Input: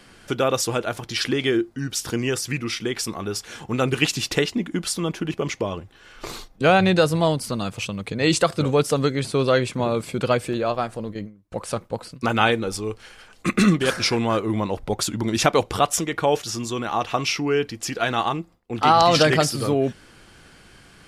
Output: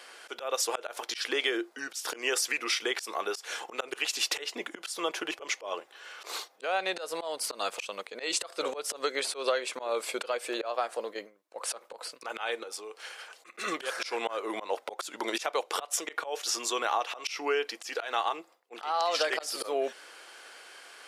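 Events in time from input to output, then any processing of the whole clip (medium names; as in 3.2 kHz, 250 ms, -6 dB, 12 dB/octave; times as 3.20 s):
12.63–13.57 s: compression 5:1, threshold -36 dBFS
whole clip: high-pass 470 Hz 24 dB/octave; compression 10:1, threshold -26 dBFS; slow attack 134 ms; trim +2 dB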